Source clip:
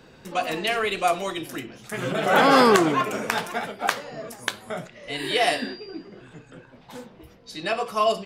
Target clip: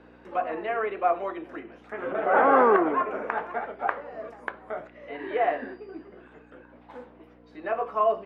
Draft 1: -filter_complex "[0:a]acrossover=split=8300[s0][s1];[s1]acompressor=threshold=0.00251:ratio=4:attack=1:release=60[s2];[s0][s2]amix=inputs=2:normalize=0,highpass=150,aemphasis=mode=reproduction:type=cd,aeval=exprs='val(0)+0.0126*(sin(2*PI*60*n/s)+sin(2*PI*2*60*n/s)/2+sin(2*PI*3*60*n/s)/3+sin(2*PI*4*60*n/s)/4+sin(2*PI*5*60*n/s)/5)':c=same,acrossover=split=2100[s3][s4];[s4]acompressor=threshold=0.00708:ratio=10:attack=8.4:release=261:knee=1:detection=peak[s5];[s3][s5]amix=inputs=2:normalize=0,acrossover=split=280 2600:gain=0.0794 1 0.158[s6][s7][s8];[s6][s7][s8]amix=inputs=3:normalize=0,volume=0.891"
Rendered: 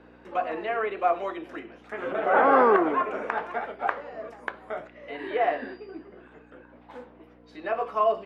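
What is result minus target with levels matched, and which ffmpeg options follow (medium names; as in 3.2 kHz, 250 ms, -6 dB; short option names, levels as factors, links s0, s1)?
compression: peak gain reduction -10 dB
-filter_complex "[0:a]acrossover=split=8300[s0][s1];[s1]acompressor=threshold=0.00251:ratio=4:attack=1:release=60[s2];[s0][s2]amix=inputs=2:normalize=0,highpass=150,aemphasis=mode=reproduction:type=cd,aeval=exprs='val(0)+0.0126*(sin(2*PI*60*n/s)+sin(2*PI*2*60*n/s)/2+sin(2*PI*3*60*n/s)/3+sin(2*PI*4*60*n/s)/4+sin(2*PI*5*60*n/s)/5)':c=same,acrossover=split=2100[s3][s4];[s4]acompressor=threshold=0.002:ratio=10:attack=8.4:release=261:knee=1:detection=peak[s5];[s3][s5]amix=inputs=2:normalize=0,acrossover=split=280 2600:gain=0.0794 1 0.158[s6][s7][s8];[s6][s7][s8]amix=inputs=3:normalize=0,volume=0.891"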